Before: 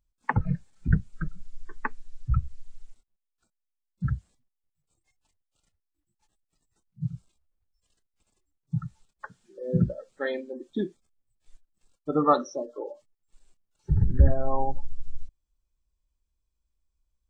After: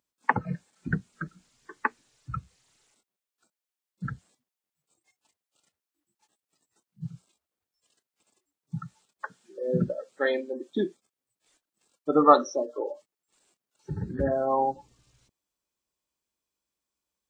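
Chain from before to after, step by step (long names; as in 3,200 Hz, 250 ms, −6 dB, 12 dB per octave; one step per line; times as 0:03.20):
high-pass filter 260 Hz 12 dB per octave
level +4.5 dB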